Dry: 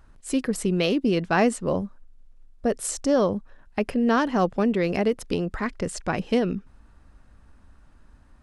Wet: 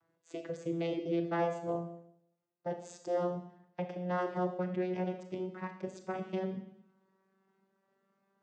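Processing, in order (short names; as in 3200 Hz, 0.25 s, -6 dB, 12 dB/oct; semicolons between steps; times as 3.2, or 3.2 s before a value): vocoder on a gliding note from E3, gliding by +3 st; bell 170 Hz -12.5 dB 0.87 oct; Schroeder reverb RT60 0.72 s, combs from 26 ms, DRR 6 dB; gain -5.5 dB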